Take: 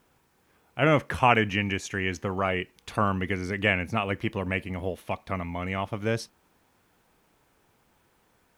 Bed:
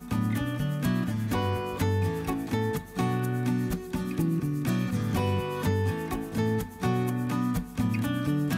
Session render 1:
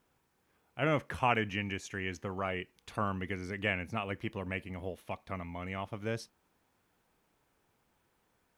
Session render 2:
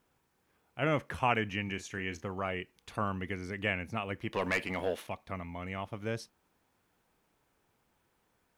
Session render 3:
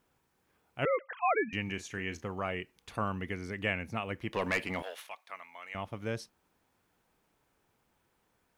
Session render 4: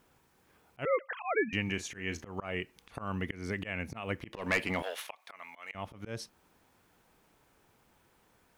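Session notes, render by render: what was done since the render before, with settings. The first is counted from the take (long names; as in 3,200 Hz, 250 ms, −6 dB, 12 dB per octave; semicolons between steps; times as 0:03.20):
level −8.5 dB
0:01.64–0:02.27: double-tracking delay 36 ms −11 dB; 0:04.33–0:05.07: mid-hump overdrive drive 21 dB, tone 5,400 Hz, clips at −19 dBFS
0:00.85–0:01.53: three sine waves on the formant tracks; 0:04.82–0:05.75: high-pass filter 1,000 Hz
in parallel at +2 dB: downward compressor 12 to 1, threshold −41 dBFS, peak gain reduction 17.5 dB; on the sum: volume swells 167 ms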